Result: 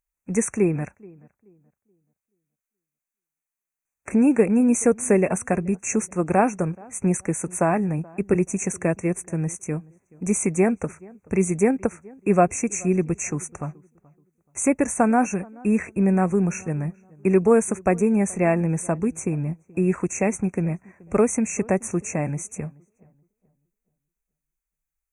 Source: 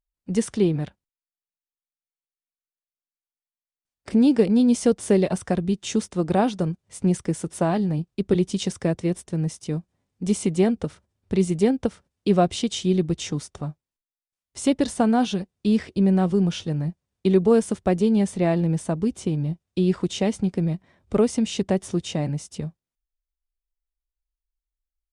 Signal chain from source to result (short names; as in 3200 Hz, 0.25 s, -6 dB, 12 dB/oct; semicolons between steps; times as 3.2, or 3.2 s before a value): brick-wall FIR band-stop 2700–5800 Hz; tilt shelf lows -4.5 dB, about 720 Hz; darkening echo 0.428 s, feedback 29%, low-pass 1400 Hz, level -24 dB; gain +3 dB